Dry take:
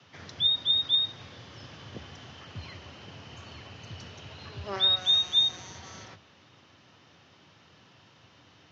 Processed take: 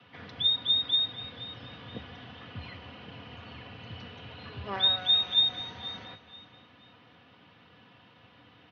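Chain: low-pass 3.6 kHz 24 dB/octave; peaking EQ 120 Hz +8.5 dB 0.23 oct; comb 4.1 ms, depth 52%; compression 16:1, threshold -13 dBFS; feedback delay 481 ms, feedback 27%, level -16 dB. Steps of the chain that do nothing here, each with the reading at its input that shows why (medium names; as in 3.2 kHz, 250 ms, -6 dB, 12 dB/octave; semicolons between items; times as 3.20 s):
compression, threshold -13 dBFS: peak at its input -14.5 dBFS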